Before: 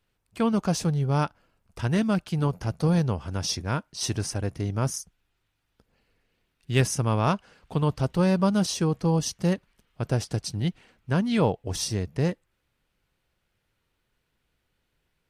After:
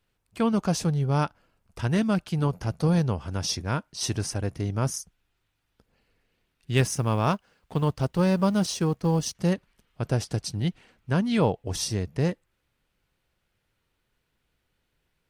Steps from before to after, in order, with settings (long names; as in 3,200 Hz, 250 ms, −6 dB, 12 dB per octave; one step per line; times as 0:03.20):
0:06.77–0:09.35: mu-law and A-law mismatch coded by A